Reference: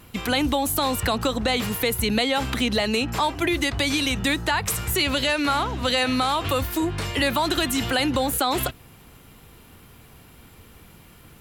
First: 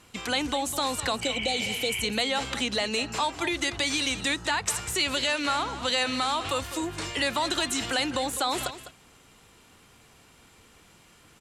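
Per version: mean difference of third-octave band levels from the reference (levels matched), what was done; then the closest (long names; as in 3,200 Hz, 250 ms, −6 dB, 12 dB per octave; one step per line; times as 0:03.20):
4.0 dB: healed spectral selection 0:01.25–0:01.99, 820–3,300 Hz after
low-pass with resonance 7,700 Hz, resonance Q 1.8
low-shelf EQ 250 Hz −9.5 dB
single-tap delay 203 ms −13 dB
level −4 dB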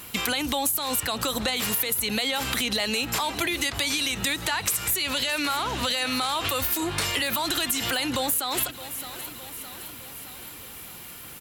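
6.5 dB: brickwall limiter −18 dBFS, peak gain reduction 7 dB
spectral tilt +2.5 dB per octave
on a send: repeating echo 614 ms, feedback 58%, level −19 dB
on the sum: downward compressor 5 to 1, threshold −28 dBFS, peak gain reduction 10 dB
level +5 dB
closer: first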